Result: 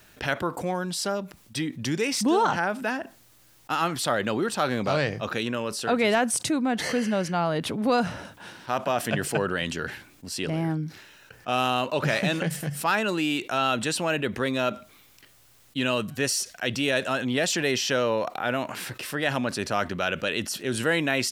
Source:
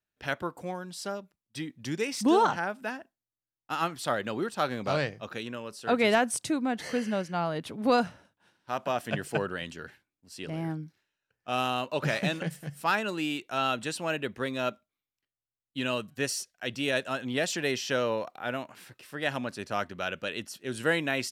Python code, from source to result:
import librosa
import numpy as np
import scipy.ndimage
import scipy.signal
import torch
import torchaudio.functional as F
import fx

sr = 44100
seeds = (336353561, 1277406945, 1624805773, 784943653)

y = fx.env_flatten(x, sr, amount_pct=50)